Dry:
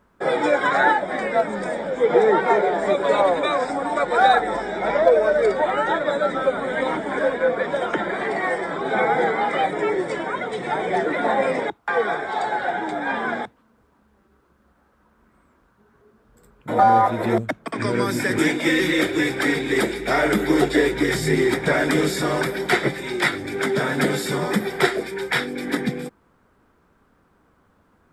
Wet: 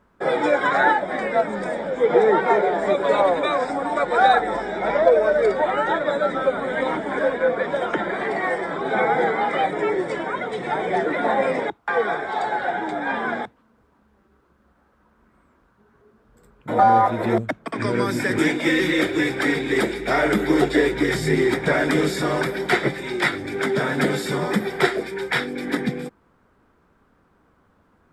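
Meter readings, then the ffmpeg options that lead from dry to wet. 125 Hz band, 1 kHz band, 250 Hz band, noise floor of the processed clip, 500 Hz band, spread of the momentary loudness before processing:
0.0 dB, 0.0 dB, 0.0 dB, -61 dBFS, 0.0 dB, 8 LU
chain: -af "highshelf=f=6.5k:g=-6"

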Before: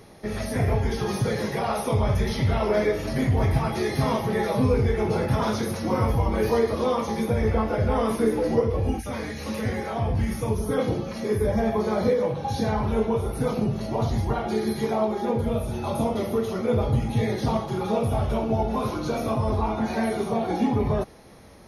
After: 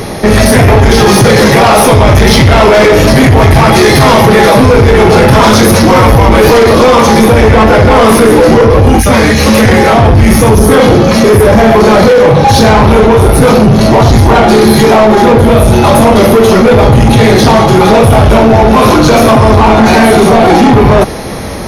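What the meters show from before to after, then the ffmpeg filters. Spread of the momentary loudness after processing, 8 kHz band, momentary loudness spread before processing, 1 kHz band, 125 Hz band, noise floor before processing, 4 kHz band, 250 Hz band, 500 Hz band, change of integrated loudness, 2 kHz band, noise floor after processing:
1 LU, +25.5 dB, 5 LU, +22.5 dB, +19.0 dB, -34 dBFS, +25.5 dB, +20.0 dB, +20.5 dB, +20.5 dB, +25.0 dB, -6 dBFS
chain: -af "apsyclip=26dB,acontrast=50,volume=-1dB"

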